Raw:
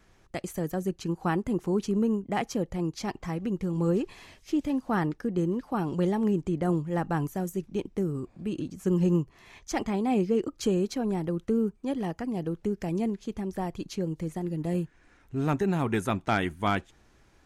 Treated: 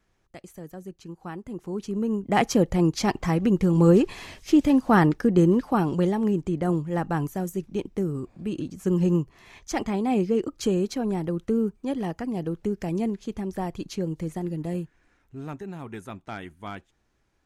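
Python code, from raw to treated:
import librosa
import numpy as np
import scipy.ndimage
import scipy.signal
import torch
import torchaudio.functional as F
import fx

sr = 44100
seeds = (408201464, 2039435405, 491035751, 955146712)

y = fx.gain(x, sr, db=fx.line((1.36, -9.5), (2.08, -0.5), (2.42, 9.0), (5.58, 9.0), (6.14, 2.0), (14.46, 2.0), (15.6, -10.5)))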